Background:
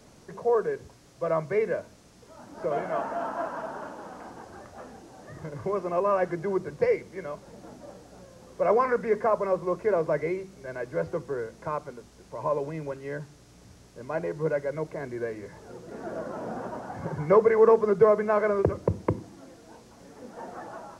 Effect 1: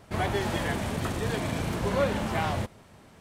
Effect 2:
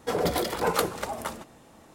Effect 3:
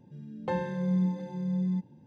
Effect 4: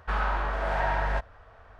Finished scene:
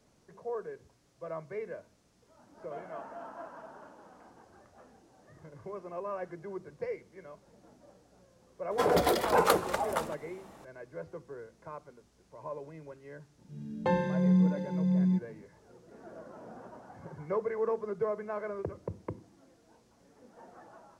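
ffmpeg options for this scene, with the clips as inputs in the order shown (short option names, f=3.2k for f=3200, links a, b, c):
-filter_complex "[0:a]volume=-13dB[a];[2:a]equalizer=f=830:w=0.48:g=5.5[b];[3:a]dynaudnorm=f=120:g=3:m=7dB[c];[b]atrim=end=1.94,asetpts=PTS-STARTPTS,volume=-3.5dB,afade=t=in:d=0.004:c=hsin,afade=t=out:st=1.936:d=0.004:c=hsin,adelay=8710[d];[c]atrim=end=2.06,asetpts=PTS-STARTPTS,volume=-4.5dB,afade=t=in:d=0.004:c=hsin,afade=t=out:st=2.056:d=0.004:c=hsin,adelay=13380[e];[a][d][e]amix=inputs=3:normalize=0"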